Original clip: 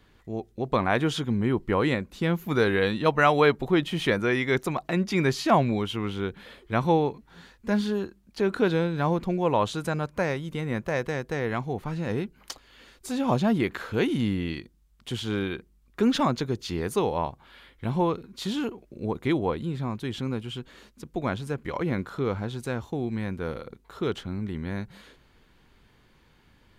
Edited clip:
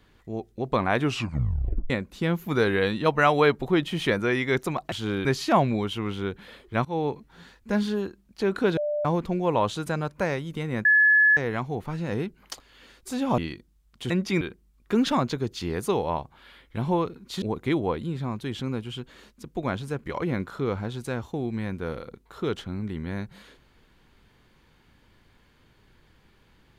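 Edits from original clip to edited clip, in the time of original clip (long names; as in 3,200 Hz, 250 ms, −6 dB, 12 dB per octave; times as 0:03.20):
0:01.00: tape stop 0.90 s
0:04.92–0:05.23: swap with 0:15.16–0:15.49
0:06.83–0:07.09: fade in, from −24 dB
0:08.75–0:09.03: beep over 593 Hz −24 dBFS
0:10.83–0:11.35: beep over 1,710 Hz −14.5 dBFS
0:13.36–0:14.44: remove
0:18.50–0:19.01: remove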